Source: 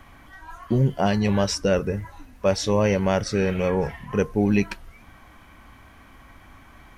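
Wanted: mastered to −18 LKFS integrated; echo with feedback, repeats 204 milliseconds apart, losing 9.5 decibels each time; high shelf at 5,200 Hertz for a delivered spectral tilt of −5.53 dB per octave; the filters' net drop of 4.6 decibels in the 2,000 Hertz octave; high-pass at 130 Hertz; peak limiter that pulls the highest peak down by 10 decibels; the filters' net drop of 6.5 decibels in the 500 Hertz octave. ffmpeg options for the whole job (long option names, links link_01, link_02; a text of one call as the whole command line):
ffmpeg -i in.wav -af "highpass=130,equalizer=frequency=500:width_type=o:gain=-7.5,equalizer=frequency=2000:width_type=o:gain=-4.5,highshelf=frequency=5200:gain=-8,alimiter=limit=-22dB:level=0:latency=1,aecho=1:1:204|408|612|816:0.335|0.111|0.0365|0.012,volume=14dB" out.wav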